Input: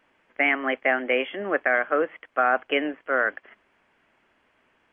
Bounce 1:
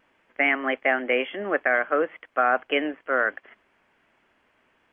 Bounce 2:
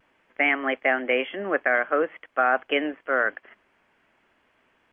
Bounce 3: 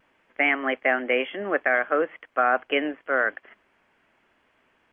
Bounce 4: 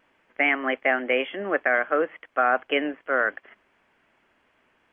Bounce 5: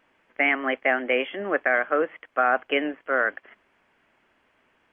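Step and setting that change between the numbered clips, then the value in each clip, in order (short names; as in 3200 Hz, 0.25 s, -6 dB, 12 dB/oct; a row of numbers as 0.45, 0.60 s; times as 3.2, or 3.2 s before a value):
vibrato, rate: 1.5, 0.48, 0.72, 2.7, 8.3 Hz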